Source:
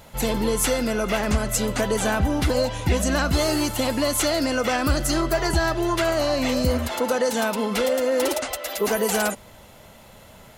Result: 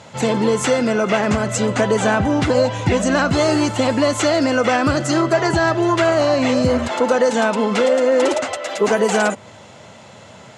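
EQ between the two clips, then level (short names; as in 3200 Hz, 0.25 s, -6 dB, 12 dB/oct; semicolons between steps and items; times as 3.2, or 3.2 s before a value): elliptic band-pass 100–7400 Hz, stop band 40 dB; dynamic EQ 5300 Hz, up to -6 dB, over -42 dBFS, Q 0.79; +7.0 dB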